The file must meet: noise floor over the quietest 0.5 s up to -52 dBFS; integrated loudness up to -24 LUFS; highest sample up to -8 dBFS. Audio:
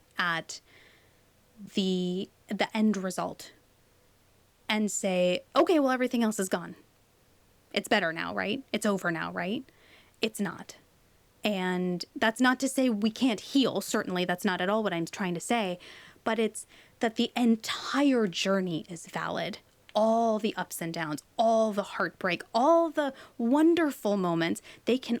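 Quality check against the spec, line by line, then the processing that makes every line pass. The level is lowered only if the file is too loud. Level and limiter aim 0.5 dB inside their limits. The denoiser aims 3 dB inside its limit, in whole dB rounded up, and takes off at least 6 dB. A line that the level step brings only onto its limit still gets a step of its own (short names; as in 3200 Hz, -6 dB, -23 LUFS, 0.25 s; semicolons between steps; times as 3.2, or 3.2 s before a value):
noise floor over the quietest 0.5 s -64 dBFS: OK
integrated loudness -28.5 LUFS: OK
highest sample -9.0 dBFS: OK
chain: none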